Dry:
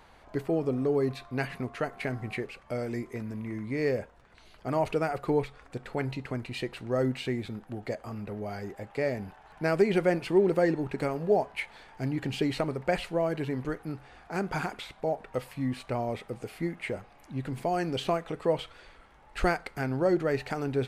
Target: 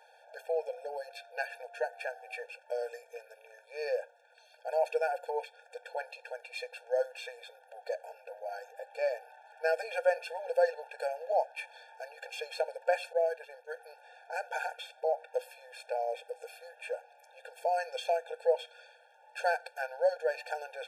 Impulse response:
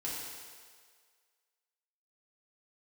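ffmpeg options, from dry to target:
-filter_complex "[0:a]asettb=1/sr,asplit=3[link_01][link_02][link_03];[link_01]atrim=end=13.134[link_04];[link_02]atrim=start=13.13:end=13.74,asetpts=PTS-STARTPTS,afade=type=in:duration=0.004:curve=qsin,afade=type=out:start_time=0.606:duration=0.004:curve=qsin,agate=range=-33dB:threshold=-27dB:ratio=3:detection=peak[link_05];[link_03]atrim=start=13.736[link_06];[link_04][link_05]acrossfade=duration=0.004:curve1=hsin:curve2=qsin[link_07];[link_07][link_06]acrossfade=duration=0.004:curve1=qsin:curve2=hsin,afftfilt=real='re*eq(mod(floor(b*sr/1024/460),2),1)':imag='im*eq(mod(floor(b*sr/1024/460),2),1)':win_size=1024:overlap=0.75"

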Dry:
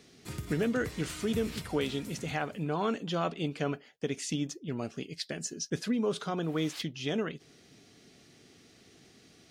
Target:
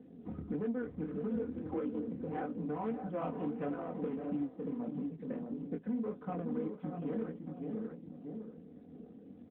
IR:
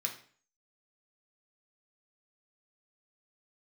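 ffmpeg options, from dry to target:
-filter_complex "[0:a]asettb=1/sr,asplit=3[link_01][link_02][link_03];[link_01]atrim=end=3.154[link_04];[link_02]atrim=start=3.15:end=4.46,asetpts=PTS-STARTPTS,afade=type=in:duration=0.004:curve=qsin,afade=type=out:start_time=1.306:duration=0.004:curve=qsin,aeval=exprs='val(0)+0.5*0.0158*sgn(val(0))':channel_layout=same[link_05];[link_03]atrim=start=4.456[link_06];[link_04][link_05]acrossfade=duration=0.004:curve1=hsin:curve2=qsin[link_07];[link_07][link_06]acrossfade=duration=0.004:curve1=qsin:curve2=hsin,asplit=2[link_08][link_09];[link_09]aecho=0:1:556:0.355[link_10];[link_08][link_10]amix=inputs=2:normalize=0,asoftclip=type=tanh:threshold=-21.5dB,adynamicsmooth=sensitivity=1.5:basefreq=550,lowpass=2700,aecho=1:1:4:0.93,asettb=1/sr,asplit=3[link_11][link_12][link_13];[link_11]atrim=end=1.424[link_14];[link_12]atrim=start=1.42:end=2.09,asetpts=PTS-STARTPTS,afade=type=in:duration=0.004:curve=qsin,afade=type=out:start_time=0.666:duration=0.004:curve=qsin,afreqshift=28[link_15];[link_13]atrim=start=2.086[link_16];[link_14][link_15]acrossfade=duration=0.004:curve1=hsin:curve2=qsin[link_17];[link_17][link_16]acrossfade=duration=0.004:curve1=qsin:curve2=hsin,flanger=delay=20:depth=7.9:speed=1.6,aemphasis=mode=reproduction:type=cd,asplit=2[link_18][link_19];[link_19]adelay=630,lowpass=frequency=1200:poles=1,volume=-8dB,asplit=2[link_20][link_21];[link_21]adelay=630,lowpass=frequency=1200:poles=1,volume=0.17,asplit=2[link_22][link_23];[link_23]adelay=630,lowpass=frequency=1200:poles=1,volume=0.17[link_24];[link_20][link_22][link_24]amix=inputs=3:normalize=0[link_25];[link_18][link_25]amix=inputs=2:normalize=0,acompressor=threshold=-51dB:ratio=2.5,volume=9.5dB" -ar 8000 -c:a libopencore_amrnb -b:a 12200

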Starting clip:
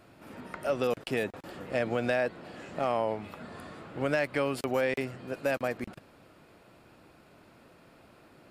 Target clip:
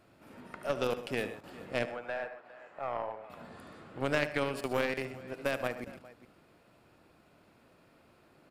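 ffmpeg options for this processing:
ffmpeg -i in.wav -filter_complex "[0:a]asettb=1/sr,asplit=3[link_01][link_02][link_03];[link_01]atrim=end=1.854[link_04];[link_02]atrim=start=1.85:end=3.3,asetpts=PTS-STARTPTS,afade=type=in:duration=0.004:curve=qsin,afade=type=out:start_time=1.446:duration=0.004:curve=qsin,acrossover=split=530 2100:gain=0.1 1 0.178[link_05][link_06][link_07];[link_05][link_06][link_07]amix=inputs=3:normalize=0[link_08];[link_03]atrim=start=3.296[link_09];[link_04][link_08]acrossfade=duration=0.004:curve1=hsin:curve2=qsin[link_10];[link_10][link_09]acrossfade=duration=0.004:curve1=qsin:curve2=hsin,aecho=1:1:74|127|408:0.316|0.266|0.158,aeval=exprs='0.188*(cos(1*acos(clip(val(0)/0.188,-1,1)))-cos(1*PI/2))+0.0211*(cos(2*acos(clip(val(0)/0.188,-1,1)))-cos(2*PI/2))+0.0376*(cos(3*acos(clip(val(0)/0.188,-1,1)))-cos(3*PI/2))':channel_layout=same,volume=1.5dB" out.wav

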